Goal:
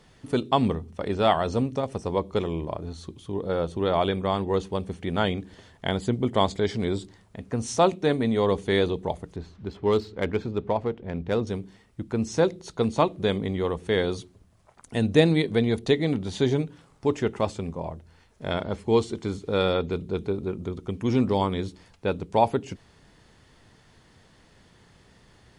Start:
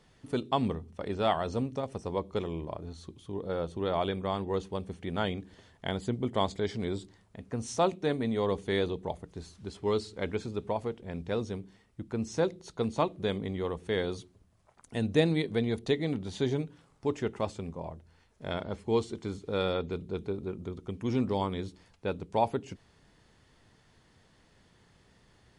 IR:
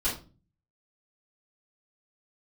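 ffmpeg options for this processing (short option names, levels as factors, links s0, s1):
-filter_complex "[0:a]asettb=1/sr,asplit=3[s0][s1][s2];[s0]atrim=end=9.364[s3];[s1]atrim=start=9.36:end=11.47,asetpts=PTS-STARTPTS,afade=t=in:d=0.004:c=qsin,afade=t=out:st=2.106:d=0.004:c=qsin,adynamicsmooth=sensitivity=6:basefreq=2800[s4];[s2]atrim=start=11.466[s5];[s3][s4]acrossfade=d=0.004:c1=hsin:c2=qsin[s6];[s6][s5]acrossfade=d=0.004:c1=qsin:c2=hsin,volume=2.11"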